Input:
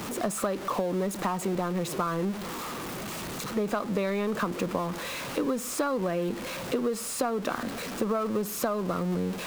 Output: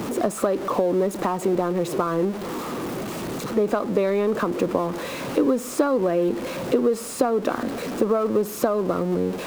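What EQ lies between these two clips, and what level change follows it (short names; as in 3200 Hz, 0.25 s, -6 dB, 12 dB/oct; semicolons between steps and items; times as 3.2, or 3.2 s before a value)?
bell 280 Hz +11.5 dB 3 oct; dynamic EQ 190 Hz, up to -8 dB, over -34 dBFS, Q 1.7; 0.0 dB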